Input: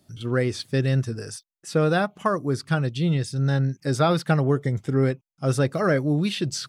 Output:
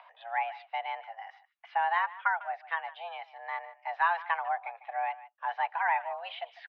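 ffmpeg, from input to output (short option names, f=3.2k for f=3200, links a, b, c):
-filter_complex "[0:a]acompressor=mode=upward:threshold=-28dB:ratio=2.5,asplit=2[a][b];[b]adelay=150,highpass=300,lowpass=3.4k,asoftclip=type=hard:threshold=-17dB,volume=-16dB[c];[a][c]amix=inputs=2:normalize=0,highpass=f=410:t=q:w=0.5412,highpass=f=410:t=q:w=1.307,lowpass=f=2.6k:t=q:w=0.5176,lowpass=f=2.6k:t=q:w=0.7071,lowpass=f=2.6k:t=q:w=1.932,afreqshift=340,volume=-4.5dB"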